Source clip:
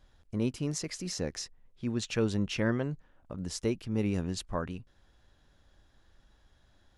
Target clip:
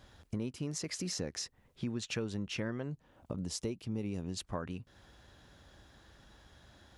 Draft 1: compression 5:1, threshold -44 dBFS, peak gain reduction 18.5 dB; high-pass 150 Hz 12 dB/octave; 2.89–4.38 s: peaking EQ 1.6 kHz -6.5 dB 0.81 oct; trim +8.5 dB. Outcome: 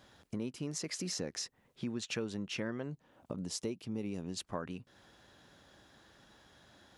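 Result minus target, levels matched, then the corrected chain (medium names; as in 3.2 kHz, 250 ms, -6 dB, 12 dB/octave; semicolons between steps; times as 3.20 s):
125 Hz band -3.5 dB
compression 5:1, threshold -44 dBFS, peak gain reduction 18.5 dB; high-pass 66 Hz 12 dB/octave; 2.89–4.38 s: peaking EQ 1.6 kHz -6.5 dB 0.81 oct; trim +8.5 dB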